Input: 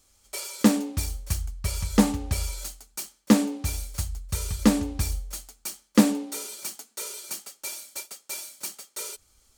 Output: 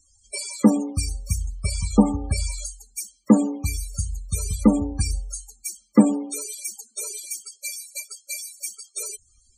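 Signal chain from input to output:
spectral peaks only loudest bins 32
high-shelf EQ 3,800 Hz +7.5 dB
level +3.5 dB

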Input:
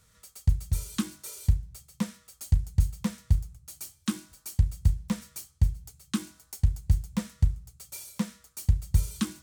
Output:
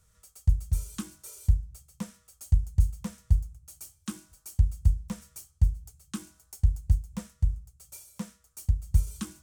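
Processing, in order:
octave-band graphic EQ 125/250/500/1,000/2,000/4,000 Hz −4/−10/−4/−5/−8/−9 dB
0:06.87–0:09.07: amplitude tremolo 2.9 Hz, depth 37%
high-shelf EQ 8,700 Hz −8.5 dB
level +2.5 dB

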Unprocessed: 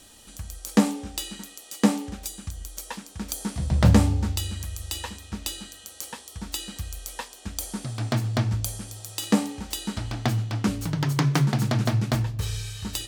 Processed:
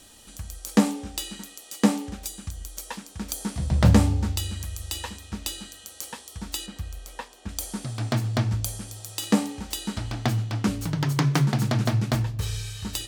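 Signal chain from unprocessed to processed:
0:06.66–0:07.49: high-shelf EQ 3,500 Hz −10 dB

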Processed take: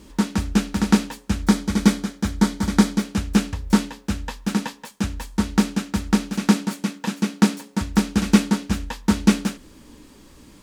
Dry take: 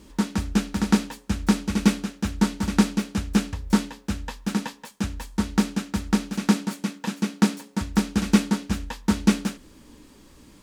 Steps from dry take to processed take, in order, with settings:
0:01.42–0:03.05: notch filter 2,700 Hz, Q 6.4
level +3 dB

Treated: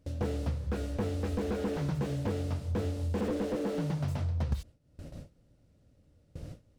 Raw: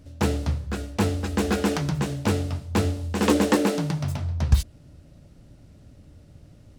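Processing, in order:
downward compressor 8 to 1, threshold −35 dBFS, peak gain reduction 23 dB
noise gate with hold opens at −39 dBFS
parametric band 500 Hz +8 dB 0.24 octaves
slew-rate limiting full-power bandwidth 8.2 Hz
level +6 dB

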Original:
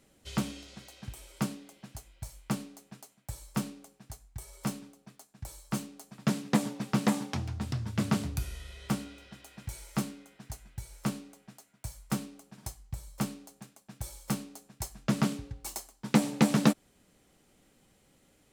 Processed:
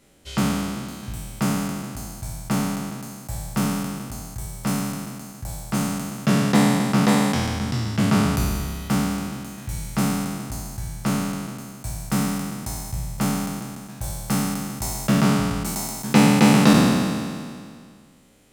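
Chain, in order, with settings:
peak hold with a decay on every bin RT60 2.07 s
level +5 dB

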